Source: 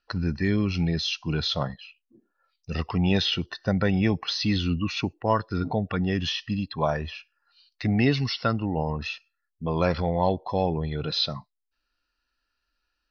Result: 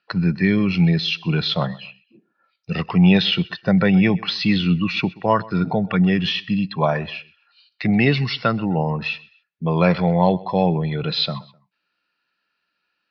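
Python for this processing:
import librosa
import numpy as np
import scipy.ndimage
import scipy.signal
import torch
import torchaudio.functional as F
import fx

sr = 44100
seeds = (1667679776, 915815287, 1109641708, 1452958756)

y = fx.cabinet(x, sr, low_hz=120.0, low_slope=24, high_hz=4400.0, hz=(180.0, 260.0, 2300.0), db=(7, -5, 6))
y = fx.echo_feedback(y, sr, ms=128, feedback_pct=33, wet_db=-22.0)
y = y * 10.0 ** (5.5 / 20.0)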